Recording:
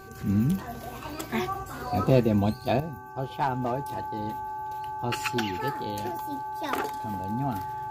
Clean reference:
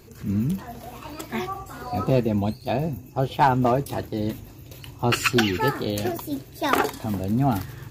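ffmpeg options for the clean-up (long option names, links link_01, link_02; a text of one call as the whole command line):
ffmpeg -i in.wav -af "bandreject=frequency=385.7:width_type=h:width=4,bandreject=frequency=771.4:width_type=h:width=4,bandreject=frequency=1157.1:width_type=h:width=4,bandreject=frequency=1542.8:width_type=h:width=4,bandreject=frequency=860:width=30,asetnsamples=nb_out_samples=441:pad=0,asendcmd='2.8 volume volume 9dB',volume=0dB" out.wav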